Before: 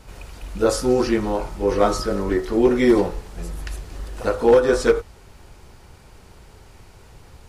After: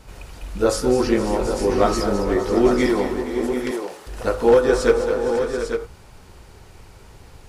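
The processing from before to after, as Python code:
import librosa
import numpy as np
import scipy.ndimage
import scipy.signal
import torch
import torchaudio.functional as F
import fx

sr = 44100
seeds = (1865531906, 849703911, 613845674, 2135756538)

p1 = fx.highpass(x, sr, hz=420.0, slope=12, at=(2.86, 4.07))
y = p1 + fx.echo_multitap(p1, sr, ms=(208, 466, 551, 732, 849), db=(-10.5, -15.0, -13.5, -11.5, -8.0), dry=0)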